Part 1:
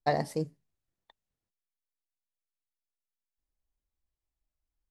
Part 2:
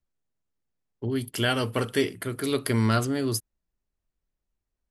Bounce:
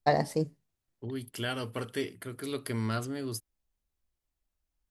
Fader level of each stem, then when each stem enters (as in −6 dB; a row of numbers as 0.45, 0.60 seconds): +2.5, −9.0 decibels; 0.00, 0.00 seconds